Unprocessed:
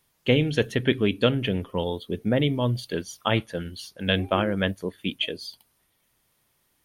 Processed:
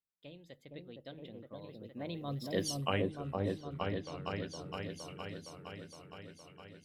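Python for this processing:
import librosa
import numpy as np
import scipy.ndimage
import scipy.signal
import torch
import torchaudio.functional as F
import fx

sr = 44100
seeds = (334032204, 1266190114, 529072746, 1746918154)

y = fx.doppler_pass(x, sr, speed_mps=46, closest_m=2.5, pass_at_s=2.67)
y = fx.echo_opening(y, sr, ms=464, hz=750, octaves=1, feedback_pct=70, wet_db=0)
y = F.gain(torch.from_numpy(y), 2.5).numpy()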